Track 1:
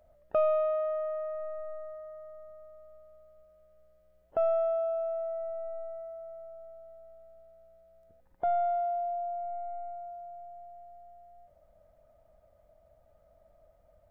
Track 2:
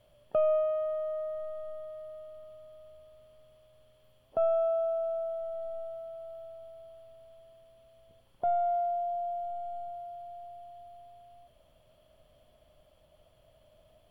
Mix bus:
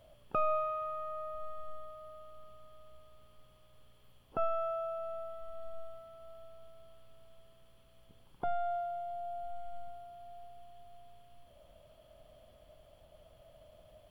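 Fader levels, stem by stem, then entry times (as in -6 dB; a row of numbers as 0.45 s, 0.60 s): -1.0 dB, +1.5 dB; 0.00 s, 0.00 s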